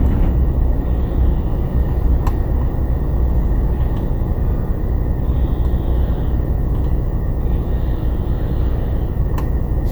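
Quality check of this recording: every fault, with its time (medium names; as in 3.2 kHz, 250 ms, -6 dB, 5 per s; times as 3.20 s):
buzz 60 Hz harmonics 17 -22 dBFS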